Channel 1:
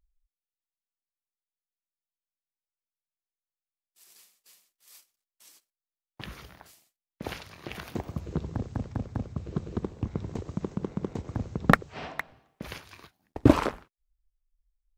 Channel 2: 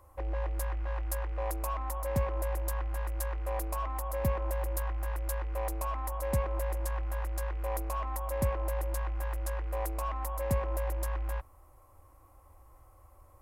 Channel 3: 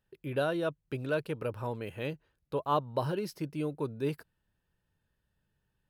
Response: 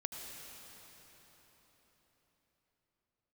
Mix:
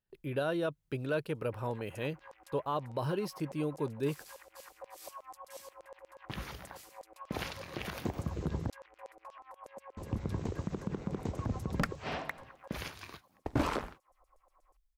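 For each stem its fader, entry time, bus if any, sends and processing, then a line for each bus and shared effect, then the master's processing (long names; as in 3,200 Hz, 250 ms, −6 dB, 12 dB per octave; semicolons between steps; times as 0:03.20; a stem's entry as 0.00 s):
+1.5 dB, 0.10 s, muted 0:08.70–0:09.97, no send, gain into a clipping stage and back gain 17 dB
+0.5 dB, 1.35 s, no send, high-pass filter 140 Hz 6 dB per octave; downward compressor 6 to 1, threshold −39 dBFS, peak gain reduction 11.5 dB; auto-filter band-pass saw down 8.3 Hz 500–7,800 Hz
−0.5 dB, 0.00 s, no send, noise gate −58 dBFS, range −10 dB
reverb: not used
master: brickwall limiter −23.5 dBFS, peak gain reduction 8 dB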